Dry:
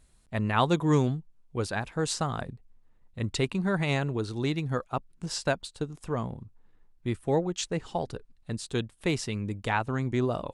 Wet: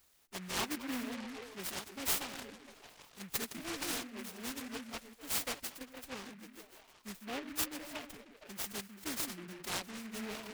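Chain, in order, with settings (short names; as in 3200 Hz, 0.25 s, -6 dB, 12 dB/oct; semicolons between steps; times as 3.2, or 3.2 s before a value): pre-emphasis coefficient 0.9; delay with a stepping band-pass 0.155 s, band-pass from 170 Hz, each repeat 0.7 oct, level -1 dB; formant-preserving pitch shift +9.5 st; low shelf 190 Hz -6 dB; noise-modulated delay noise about 1700 Hz, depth 0.21 ms; gain +4 dB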